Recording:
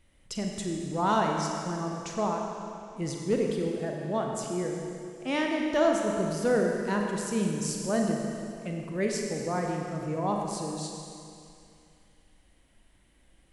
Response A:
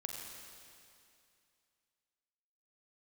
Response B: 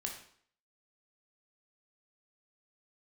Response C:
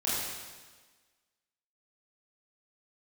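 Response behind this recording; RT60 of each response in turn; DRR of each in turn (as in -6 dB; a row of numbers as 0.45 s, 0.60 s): A; 2.5 s, 0.60 s, 1.4 s; 0.5 dB, 0.5 dB, -9.5 dB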